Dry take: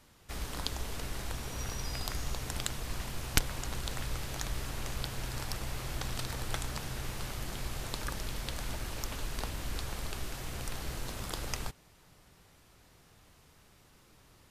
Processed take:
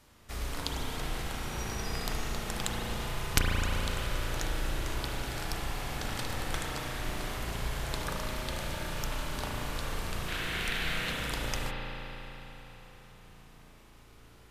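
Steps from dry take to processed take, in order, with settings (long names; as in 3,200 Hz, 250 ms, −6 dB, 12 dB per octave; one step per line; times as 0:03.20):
0:10.28–0:11.11: flat-topped bell 2,400 Hz +11 dB
spring reverb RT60 4 s, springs 35 ms, chirp 45 ms, DRR −3 dB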